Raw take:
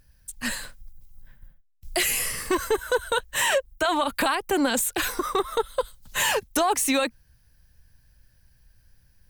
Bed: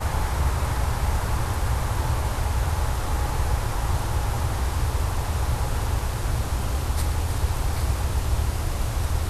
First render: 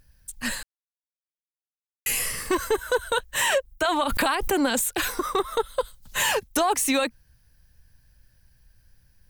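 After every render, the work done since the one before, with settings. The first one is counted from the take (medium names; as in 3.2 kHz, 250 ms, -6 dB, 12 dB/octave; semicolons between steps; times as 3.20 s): 0.63–2.06 s: mute; 4.06–4.52 s: swell ahead of each attack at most 28 dB/s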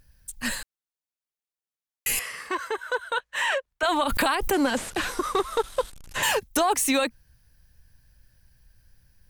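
2.19–3.83 s: band-pass filter 1.5 kHz, Q 0.69; 4.53–6.23 s: one-bit delta coder 64 kbps, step -37.5 dBFS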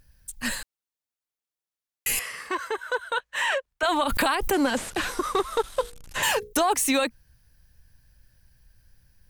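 5.71–6.53 s: hum notches 60/120/180/240/300/360/420/480 Hz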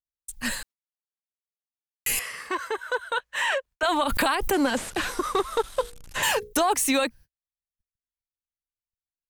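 gate -46 dBFS, range -49 dB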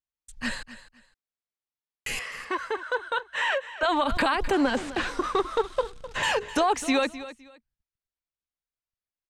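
distance through air 95 m; feedback delay 256 ms, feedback 23%, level -15 dB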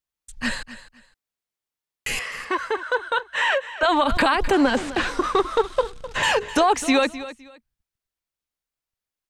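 trim +5 dB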